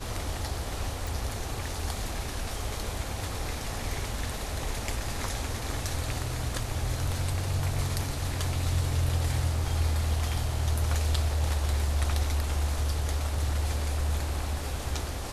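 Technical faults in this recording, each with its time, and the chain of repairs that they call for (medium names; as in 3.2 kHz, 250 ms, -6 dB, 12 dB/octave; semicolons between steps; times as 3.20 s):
1.07 s: pop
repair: de-click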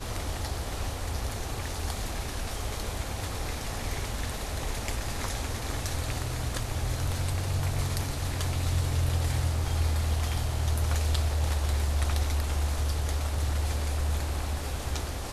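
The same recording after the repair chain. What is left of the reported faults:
nothing left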